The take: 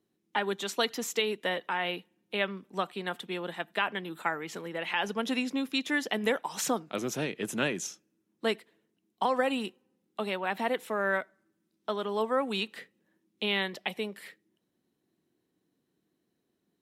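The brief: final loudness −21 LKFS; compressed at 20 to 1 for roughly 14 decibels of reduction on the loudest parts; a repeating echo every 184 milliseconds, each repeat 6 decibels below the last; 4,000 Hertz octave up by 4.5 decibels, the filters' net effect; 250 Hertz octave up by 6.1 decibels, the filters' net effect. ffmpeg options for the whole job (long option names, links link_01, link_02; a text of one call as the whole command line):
ffmpeg -i in.wav -af "equalizer=frequency=250:width_type=o:gain=7,equalizer=frequency=4000:width_type=o:gain=6,acompressor=threshold=-34dB:ratio=20,aecho=1:1:184|368|552|736|920|1104:0.501|0.251|0.125|0.0626|0.0313|0.0157,volume=17.5dB" out.wav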